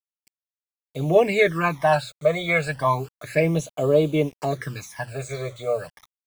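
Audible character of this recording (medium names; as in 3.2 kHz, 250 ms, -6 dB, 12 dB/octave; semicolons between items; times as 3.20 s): a quantiser's noise floor 8-bit, dither none; phasing stages 12, 0.32 Hz, lowest notch 280–1900 Hz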